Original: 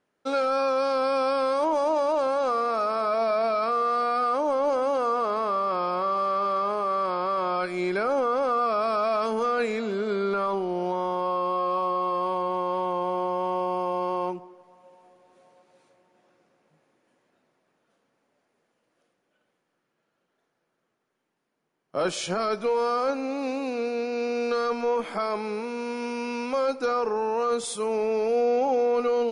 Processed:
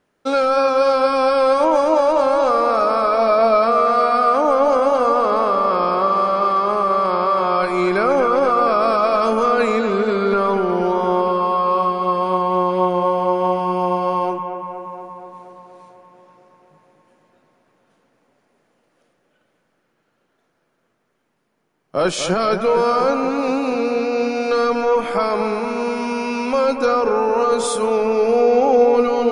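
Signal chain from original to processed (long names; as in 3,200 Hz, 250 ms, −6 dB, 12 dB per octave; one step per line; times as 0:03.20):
low-shelf EQ 88 Hz +10 dB
bucket-brigade delay 237 ms, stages 4,096, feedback 70%, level −8 dB
level +7.5 dB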